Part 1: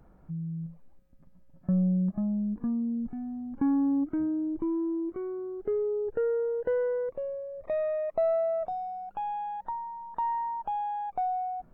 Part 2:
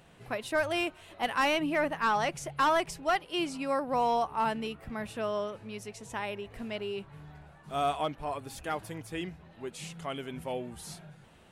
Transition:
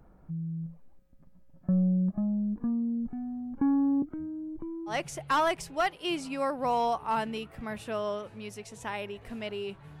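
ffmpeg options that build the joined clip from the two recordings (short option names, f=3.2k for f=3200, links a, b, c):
-filter_complex "[0:a]asettb=1/sr,asplit=3[a][b][c];[a]atrim=end=4.024[d];[b]atrim=start=4.02:end=4.96,asetpts=PTS-STARTPTS,afade=t=in:d=0.004:c=qsin,afade=t=out:st=0.936:d=0.004:c=qsin,acrossover=split=220|3000[e][f][g];[f]acompressor=threshold=-43dB:ratio=5:attack=3.2:release=140:knee=2.83:detection=peak[h];[e][h][g]amix=inputs=3:normalize=0[i];[c]atrim=start=4.956[j];[d][i]acrossfade=d=0.004:c1=hsin:c2=qsin[k];[k][j]acrossfade=d=0.004:c1=qsin:c2=hsin,apad=whole_dur=10,atrim=end=10,atrim=end=4.96,asetpts=PTS-STARTPTS[l];[1:a]atrim=start=2.15:end=7.29,asetpts=PTS-STARTPTS[m];[l][m]acrossfade=d=0.1:c1=tri:c2=tri"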